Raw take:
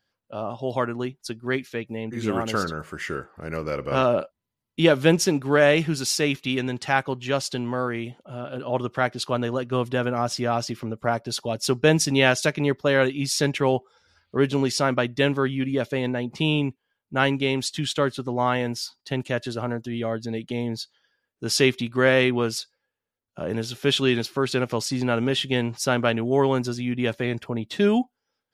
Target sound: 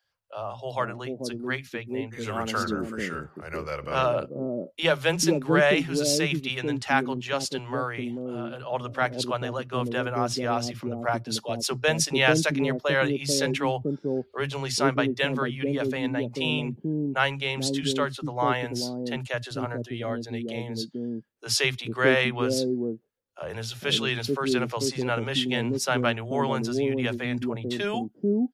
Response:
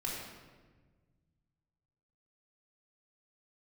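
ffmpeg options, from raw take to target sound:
-filter_complex "[0:a]acrossover=split=150|460[a][b][c];[a]adelay=40[d];[b]adelay=440[e];[d][e][c]amix=inputs=3:normalize=0,volume=-1dB"

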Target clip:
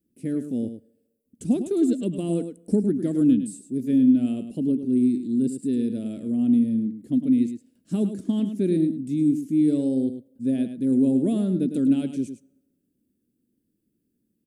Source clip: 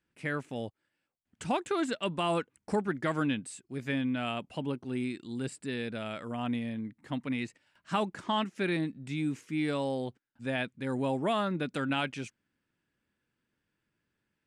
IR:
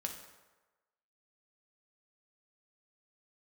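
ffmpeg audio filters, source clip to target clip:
-filter_complex "[0:a]firequalizer=gain_entry='entry(140,0);entry(240,12);entry(940,-26);entry(3700,-11);entry(11000,8)':delay=0.05:min_phase=1,aecho=1:1:105:0.316,asplit=2[a][b];[1:a]atrim=start_sample=2205[c];[b][c]afir=irnorm=-1:irlink=0,volume=-17.5dB[d];[a][d]amix=inputs=2:normalize=0,volume=2.5dB"

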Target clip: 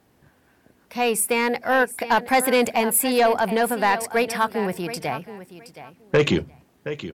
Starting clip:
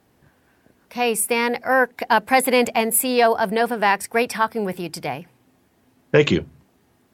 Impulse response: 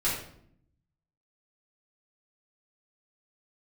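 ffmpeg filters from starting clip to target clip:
-af "aecho=1:1:721|1442:0.188|0.0339,asoftclip=type=tanh:threshold=-10dB"

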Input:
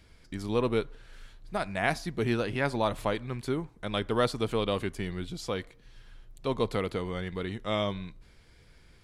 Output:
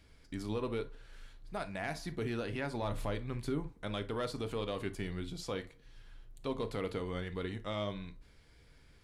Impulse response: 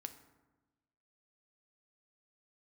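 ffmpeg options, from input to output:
-filter_complex "[0:a]asoftclip=type=tanh:threshold=-16.5dB,alimiter=limit=-23.5dB:level=0:latency=1:release=144,asettb=1/sr,asplit=3[a][b][c];[a]atrim=end=2.824[d];[b]atrim=start=2.82:end=3.72,asetpts=PTS-STARTPTS,afade=t=in:d=0.004:c=qsin,afade=t=out:st=0.896:d=0.004:c=qsin,lowshelf=f=130:g=9[e];[c]atrim=start=3.716[f];[d][e]acrossfade=d=0.004:c1=hsin:c2=qsin[g];[g][f]acrossfade=d=0.004:c1=qsin:c2=hsin[h];[1:a]atrim=start_sample=2205,atrim=end_sample=3087[i];[h][i]afir=irnorm=-1:irlink=0"

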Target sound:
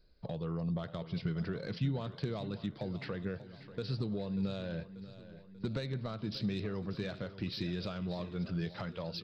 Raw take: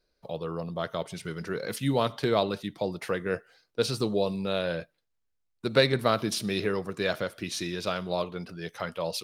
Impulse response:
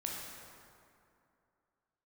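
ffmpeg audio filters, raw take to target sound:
-filter_complex "[0:a]aresample=11025,aresample=44100,acompressor=threshold=-39dB:ratio=6,asoftclip=type=tanh:threshold=-30.5dB,bass=f=250:g=13,treble=f=4k:g=4,asplit=2[a][b];[b]aecho=0:1:588|1176|1764|2352|2940:0.188|0.104|0.057|0.0313|0.0172[c];[a][c]amix=inputs=2:normalize=0"

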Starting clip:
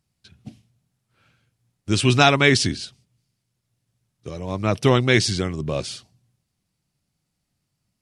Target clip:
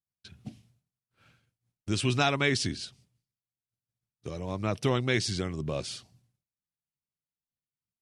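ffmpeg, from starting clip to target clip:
-af "acompressor=threshold=-41dB:ratio=1.5,agate=range=-33dB:threshold=-59dB:ratio=3:detection=peak"

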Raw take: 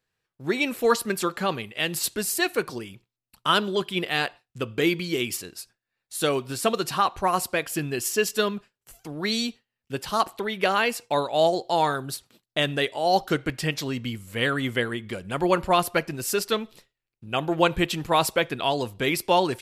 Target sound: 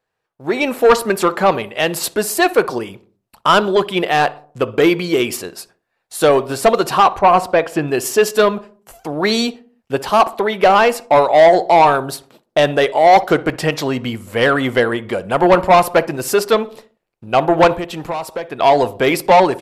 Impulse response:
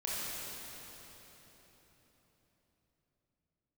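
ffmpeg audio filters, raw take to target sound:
-filter_complex "[0:a]equalizer=f=720:t=o:w=2.1:g=13.5,asoftclip=type=tanh:threshold=-8.5dB,dynaudnorm=f=360:g=3:m=10.5dB,asettb=1/sr,asplit=3[a][b][c];[a]atrim=end=7.194[d];[b]atrim=start=7.19:end=7.88,asetpts=PTS-STARTPTS,afade=t=in:d=0.004:c=qsin,afade=t=out:st=0.686:d=0.004:c=qsin,aemphasis=mode=reproduction:type=50fm[e];[c]atrim=start=7.876[f];[d][e]acrossfade=d=0.004:c1=hsin:c2=qsin[g];[g][f]acrossfade=d=0.004:c1=qsin:c2=hsin,asplit=3[h][i][j];[h]afade=t=out:st=17.75:d=0.02[k];[i]acompressor=threshold=-19dB:ratio=10,afade=t=in:st=17.75:d=0.02,afade=t=out:st=18.59:d=0.02[l];[j]afade=t=in:st=18.59:d=0.02[m];[k][l][m]amix=inputs=3:normalize=0,asplit=2[n][o];[o]adelay=61,lowpass=f=1.1k:p=1,volume=-16.5dB,asplit=2[p][q];[q]adelay=61,lowpass=f=1.1k:p=1,volume=0.53,asplit=2[r][s];[s]adelay=61,lowpass=f=1.1k:p=1,volume=0.53,asplit=2[t][u];[u]adelay=61,lowpass=f=1.1k:p=1,volume=0.53,asplit=2[v][w];[w]adelay=61,lowpass=f=1.1k:p=1,volume=0.53[x];[p][r][t][v][x]amix=inputs=5:normalize=0[y];[n][y]amix=inputs=2:normalize=0,aresample=32000,aresample=44100,volume=-2.5dB"

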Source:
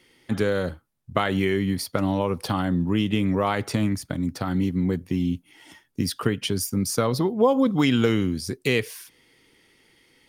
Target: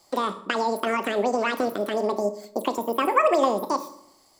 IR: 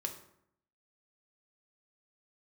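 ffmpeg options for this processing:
-filter_complex "[0:a]asetrate=103194,aresample=44100,asplit=2[a][b];[1:a]atrim=start_sample=2205[c];[b][c]afir=irnorm=-1:irlink=0,volume=2.5dB[d];[a][d]amix=inputs=2:normalize=0,acrossover=split=2900[e][f];[f]acompressor=threshold=-33dB:ratio=4:attack=1:release=60[g];[e][g]amix=inputs=2:normalize=0,volume=-7dB"

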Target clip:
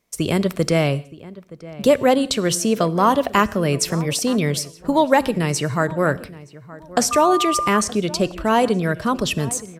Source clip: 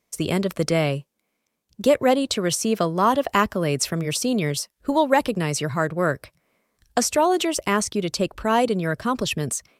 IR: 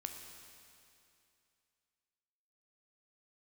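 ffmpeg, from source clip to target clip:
-filter_complex "[0:a]asplit=2[a][b];[b]adelay=921,lowpass=f=1.9k:p=1,volume=-18dB,asplit=2[c][d];[d]adelay=921,lowpass=f=1.9k:p=1,volume=0.31,asplit=2[e][f];[f]adelay=921,lowpass=f=1.9k:p=1,volume=0.31[g];[a][c][e][g]amix=inputs=4:normalize=0,asettb=1/sr,asplit=3[h][i][j];[h]atrim=end=7.114[k];[i]atrim=start=7.11:end=7.81,asetpts=PTS-STARTPTS,afade=t=in:d=0.004:c=qsin,afade=t=out:st=0.696:d=0.004:c=qsin,aeval=exprs='val(0)+0.0794*sin(2*PI*1200*n/s)':c=same[l];[j]atrim=start=7.806[m];[k][l]acrossfade=d=0.004:c1=hsin:c2=qsin[n];[n][m]acrossfade=d=0.004:c1=qsin:c2=hsin,asplit=2[o][p];[1:a]atrim=start_sample=2205,afade=t=out:st=0.23:d=0.01,atrim=end_sample=10584,lowshelf=f=200:g=9.5[q];[p][q]afir=irnorm=-1:irlink=0,volume=-6.5dB[r];[o][r]amix=inputs=2:normalize=0"

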